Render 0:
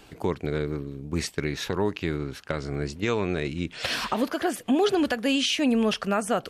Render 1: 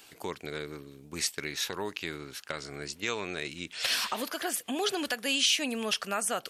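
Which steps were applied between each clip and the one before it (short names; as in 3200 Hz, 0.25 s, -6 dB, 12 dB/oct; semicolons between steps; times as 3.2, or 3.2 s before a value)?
tilt +3.5 dB/oct; gain -5.5 dB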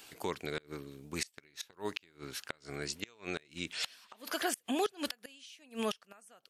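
flipped gate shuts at -21 dBFS, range -28 dB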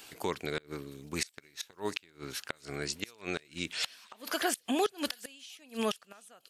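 thin delay 0.711 s, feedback 34%, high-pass 4800 Hz, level -14 dB; gain +3 dB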